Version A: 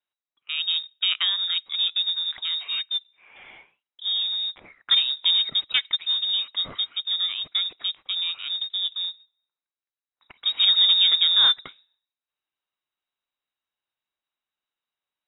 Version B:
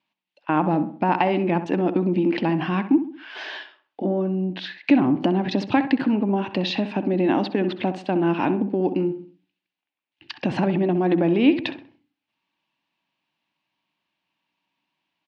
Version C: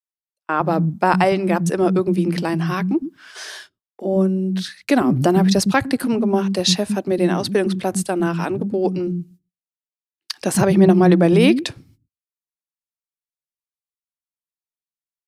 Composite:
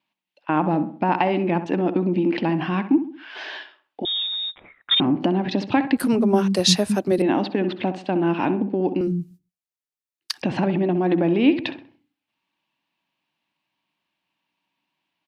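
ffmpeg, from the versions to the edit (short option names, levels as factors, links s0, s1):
-filter_complex "[2:a]asplit=2[s0][s1];[1:a]asplit=4[s2][s3][s4][s5];[s2]atrim=end=4.052[s6];[0:a]atrim=start=4.048:end=5.002[s7];[s3]atrim=start=4.998:end=5.972[s8];[s0]atrim=start=5.968:end=7.222[s9];[s4]atrim=start=7.218:end=9.012[s10];[s1]atrim=start=9.008:end=10.422[s11];[s5]atrim=start=10.418[s12];[s6][s7]acrossfade=d=0.004:c1=hsin:c2=hsin[s13];[s13][s8]acrossfade=d=0.004:c1=hsin:c2=hsin[s14];[s14][s9]acrossfade=d=0.004:c1=hsin:c2=hsin[s15];[s15][s10]acrossfade=d=0.004:c1=hsin:c2=hsin[s16];[s16][s11]acrossfade=d=0.004:c1=hsin:c2=hsin[s17];[s17][s12]acrossfade=d=0.004:c1=hsin:c2=hsin"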